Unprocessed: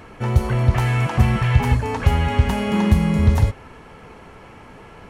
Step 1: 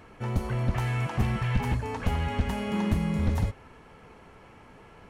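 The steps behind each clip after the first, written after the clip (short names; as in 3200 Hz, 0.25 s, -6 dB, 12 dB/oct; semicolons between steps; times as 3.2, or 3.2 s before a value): one-sided fold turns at -11.5 dBFS; gain -9 dB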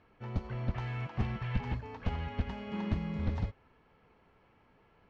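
LPF 4900 Hz 24 dB/oct; upward expander 1.5:1, over -38 dBFS; gain -5.5 dB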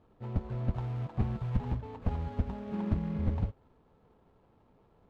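median filter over 25 samples; LPF 2200 Hz 6 dB/oct; gain +2.5 dB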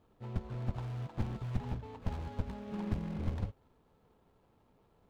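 one-sided fold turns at -31 dBFS; high shelf 3100 Hz +8.5 dB; gain -4 dB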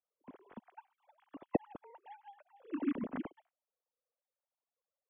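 sine-wave speech; upward expander 2.5:1, over -51 dBFS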